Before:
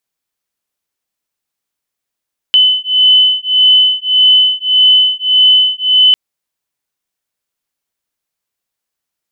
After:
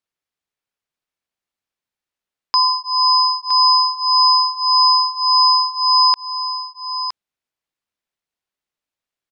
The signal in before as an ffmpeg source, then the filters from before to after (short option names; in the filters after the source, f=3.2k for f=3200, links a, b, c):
-f lavfi -i "aevalsrc='0.335*(sin(2*PI*3020*t)+sin(2*PI*3021.7*t))':d=3.6:s=44100"
-filter_complex "[0:a]lowpass=f=2.7k:p=1,aeval=exprs='val(0)*sin(2*PI*2000*n/s)':c=same,asplit=2[a][b];[b]aecho=0:1:965:0.335[c];[a][c]amix=inputs=2:normalize=0"